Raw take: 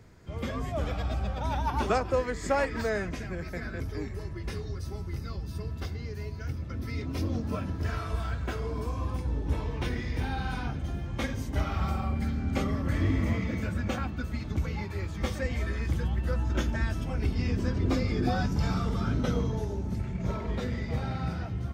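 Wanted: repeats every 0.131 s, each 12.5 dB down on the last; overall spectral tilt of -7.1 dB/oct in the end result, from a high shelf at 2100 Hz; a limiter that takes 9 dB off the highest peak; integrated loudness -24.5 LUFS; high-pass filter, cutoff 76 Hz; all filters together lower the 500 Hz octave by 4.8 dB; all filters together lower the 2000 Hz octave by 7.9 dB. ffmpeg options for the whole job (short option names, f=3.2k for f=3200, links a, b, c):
-af "highpass=76,equalizer=f=500:t=o:g=-5,equalizer=f=2k:t=o:g=-7,highshelf=f=2.1k:g=-5.5,alimiter=level_in=2.5dB:limit=-24dB:level=0:latency=1,volume=-2.5dB,aecho=1:1:131|262|393:0.237|0.0569|0.0137,volume=11.5dB"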